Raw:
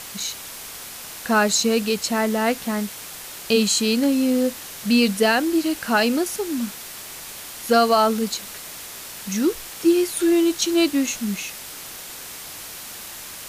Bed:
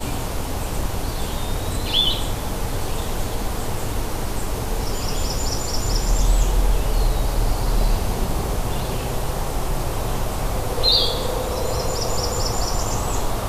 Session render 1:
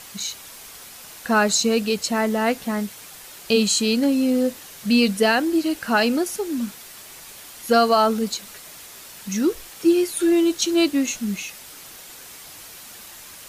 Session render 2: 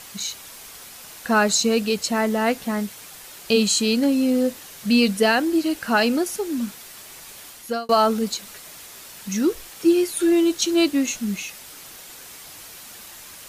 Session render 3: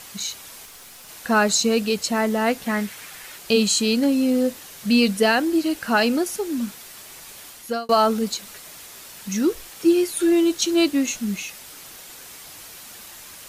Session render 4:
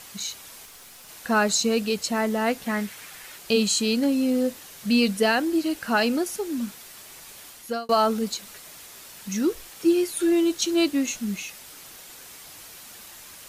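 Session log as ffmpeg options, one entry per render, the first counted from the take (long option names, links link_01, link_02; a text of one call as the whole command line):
ffmpeg -i in.wav -af "afftdn=noise_reduction=6:noise_floor=-37" out.wav
ffmpeg -i in.wav -filter_complex "[0:a]asplit=2[link_01][link_02];[link_01]atrim=end=7.89,asetpts=PTS-STARTPTS,afade=type=out:start_time=7.48:duration=0.41[link_03];[link_02]atrim=start=7.89,asetpts=PTS-STARTPTS,afade=type=in:duration=0.004:curve=hsin[link_04];[link_03][link_04]concat=n=2:v=0:a=1" out.wav
ffmpeg -i in.wav -filter_complex "[0:a]asettb=1/sr,asplit=3[link_01][link_02][link_03];[link_01]atrim=end=0.654[link_04];[link_02]atrim=start=0.65:end=1.09,asetpts=PTS-STARTPTS,afade=type=in:duration=0.004:curve=qsin,afade=type=out:start_time=0.436:duration=0.004:curve=qsin,aeval=exprs='(tanh(70.8*val(0)+0.35)-tanh(0.35))/70.8':channel_layout=same[link_05];[link_03]atrim=start=1.086[link_06];[link_04][link_05]acrossfade=duration=0.004:curve1=hsin:curve2=qsin[link_07];[link_07][link_06]acrossfade=duration=0.004:curve1=qsin:curve2=hsin,asettb=1/sr,asplit=3[link_08][link_09][link_10];[link_08]atrim=end=2.664[link_11];[link_09]atrim=start=2.66:end=3.37,asetpts=PTS-STARTPTS,afade=type=in:duration=0.004:curve=qsin,afade=type=out:start_time=0.706:duration=0.004:curve=qsin,equalizer=frequency=1900:width_type=o:width=1.2:gain=8[link_12];[link_10]atrim=start=3.366[link_13];[link_11][link_12]acrossfade=duration=0.004:curve1=hsin:curve2=qsin[link_14];[link_14][link_13]acrossfade=duration=0.004:curve1=qsin:curve2=hsin" out.wav
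ffmpeg -i in.wav -af "volume=-3dB" out.wav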